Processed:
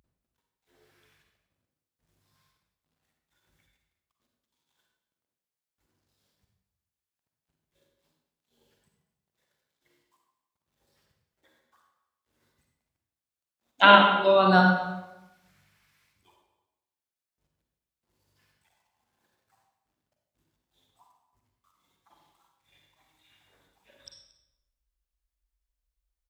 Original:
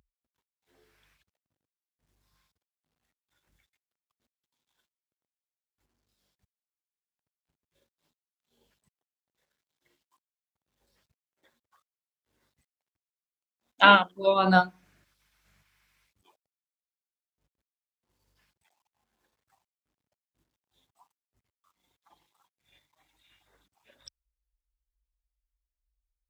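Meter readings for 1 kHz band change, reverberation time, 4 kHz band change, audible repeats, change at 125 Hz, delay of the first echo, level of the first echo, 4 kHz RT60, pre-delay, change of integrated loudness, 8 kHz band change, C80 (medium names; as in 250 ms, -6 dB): +2.5 dB, 1.0 s, +2.5 dB, 1, +4.0 dB, 230 ms, -18.0 dB, 0.80 s, 39 ms, +2.0 dB, no reading, 4.0 dB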